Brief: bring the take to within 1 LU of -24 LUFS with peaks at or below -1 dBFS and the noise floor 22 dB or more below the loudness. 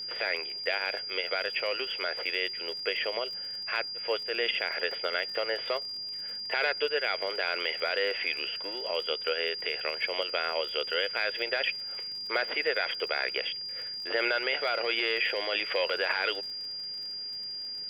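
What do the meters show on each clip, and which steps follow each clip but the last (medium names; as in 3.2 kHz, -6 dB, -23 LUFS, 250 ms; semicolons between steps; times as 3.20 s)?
tick rate 46 per s; steady tone 4.8 kHz; tone level -35 dBFS; loudness -30.0 LUFS; peak level -16.0 dBFS; loudness target -24.0 LUFS
-> de-click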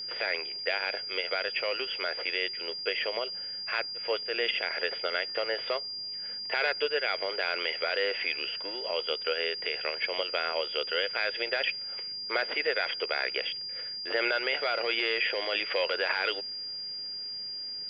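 tick rate 0.11 per s; steady tone 4.8 kHz; tone level -35 dBFS
-> band-stop 4.8 kHz, Q 30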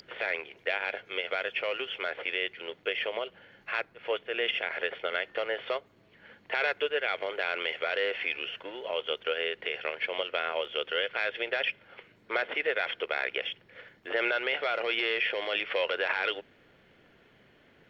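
steady tone not found; loudness -31.0 LUFS; peak level -17.0 dBFS; loudness target -24.0 LUFS
-> trim +7 dB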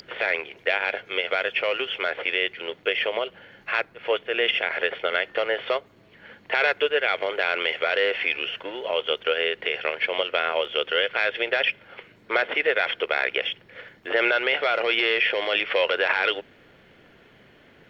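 loudness -24.0 LUFS; peak level -10.0 dBFS; noise floor -55 dBFS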